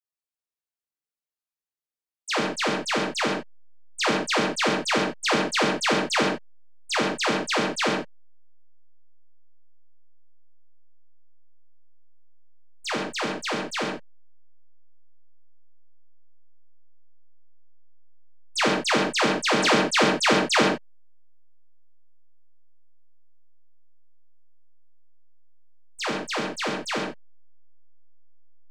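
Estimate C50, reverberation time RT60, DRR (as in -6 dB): 3.0 dB, no single decay rate, -2.0 dB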